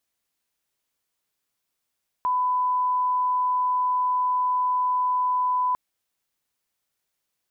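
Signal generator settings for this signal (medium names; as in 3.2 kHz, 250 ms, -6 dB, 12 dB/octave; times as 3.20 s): line-up tone -20 dBFS 3.50 s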